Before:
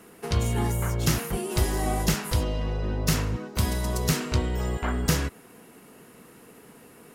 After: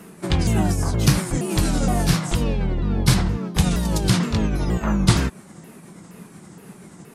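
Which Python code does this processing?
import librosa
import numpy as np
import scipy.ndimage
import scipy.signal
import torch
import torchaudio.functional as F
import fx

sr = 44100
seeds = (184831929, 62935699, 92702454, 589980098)

y = fx.pitch_ramps(x, sr, semitones=-6.5, every_ms=470)
y = fx.peak_eq(y, sr, hz=180.0, db=9.5, octaves=0.55)
y = F.gain(torch.from_numpy(y), 5.5).numpy()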